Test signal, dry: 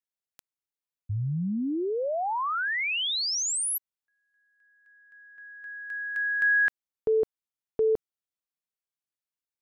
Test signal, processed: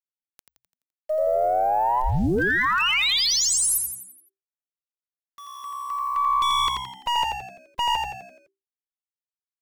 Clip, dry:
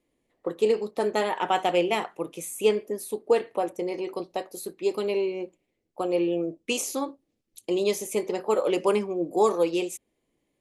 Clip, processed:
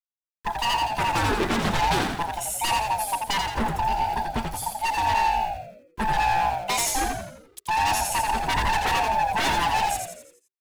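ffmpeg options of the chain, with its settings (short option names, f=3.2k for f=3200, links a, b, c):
-filter_complex "[0:a]afftfilt=real='real(if(lt(b,1008),b+24*(1-2*mod(floor(b/24),2)),b),0)':imag='imag(if(lt(b,1008),b+24*(1-2*mod(floor(b/24),2)),b),0)':win_size=2048:overlap=0.75,aeval=exprs='val(0)*gte(abs(val(0)),0.00447)':c=same,aeval=exprs='(tanh(7.08*val(0)+0.2)-tanh(0.2))/7.08':c=same,aeval=exprs='0.0562*(abs(mod(val(0)/0.0562+3,4)-2)-1)':c=same,asplit=7[a][b][c][d][e][f][g];[b]adelay=85,afreqshift=-65,volume=-4dB[h];[c]adelay=170,afreqshift=-130,volume=-10.4dB[i];[d]adelay=255,afreqshift=-195,volume=-16.8dB[j];[e]adelay=340,afreqshift=-260,volume=-23.1dB[k];[f]adelay=425,afreqshift=-325,volume=-29.5dB[l];[g]adelay=510,afreqshift=-390,volume=-35.9dB[m];[a][h][i][j][k][l][m]amix=inputs=7:normalize=0,volume=6dB"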